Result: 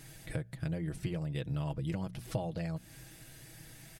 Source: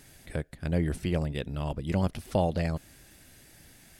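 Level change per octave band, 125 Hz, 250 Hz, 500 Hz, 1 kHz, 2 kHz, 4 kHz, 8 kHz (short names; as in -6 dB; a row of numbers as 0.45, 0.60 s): -5.0, -6.5, -10.0, -10.5, -6.5, -6.5, -2.0 dB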